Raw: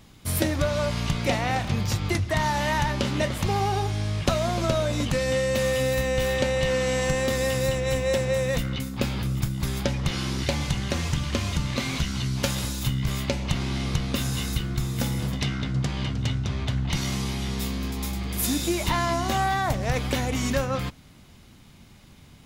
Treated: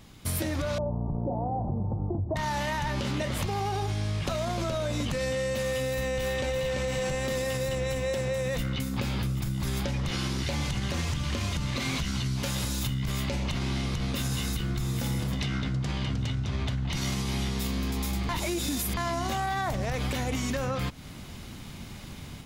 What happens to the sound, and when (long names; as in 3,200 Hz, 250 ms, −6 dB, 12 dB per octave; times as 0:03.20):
0:00.78–0:02.36: elliptic low-pass filter 870 Hz, stop band 60 dB
0:06.08–0:06.76: delay throw 340 ms, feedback 45%, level −3 dB
0:18.29–0:18.97: reverse
whole clip: automatic gain control gain up to 9 dB; brickwall limiter −12.5 dBFS; downward compressor, threshold −27 dBFS